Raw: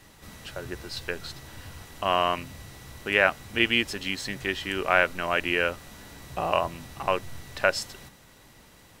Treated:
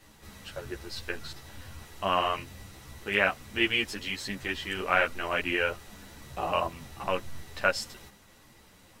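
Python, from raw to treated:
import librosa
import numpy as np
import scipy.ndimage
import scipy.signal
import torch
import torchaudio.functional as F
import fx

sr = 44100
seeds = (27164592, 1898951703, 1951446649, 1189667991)

y = fx.ensemble(x, sr)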